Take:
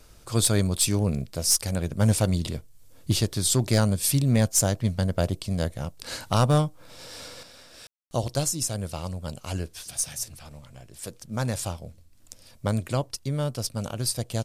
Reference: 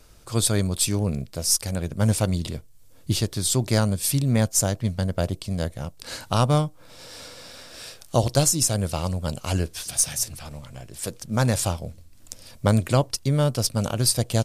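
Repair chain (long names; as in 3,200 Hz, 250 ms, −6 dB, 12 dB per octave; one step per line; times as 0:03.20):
clipped peaks rebuilt −13 dBFS
ambience match 0:07.87–0:08.11
level correction +6.5 dB, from 0:07.43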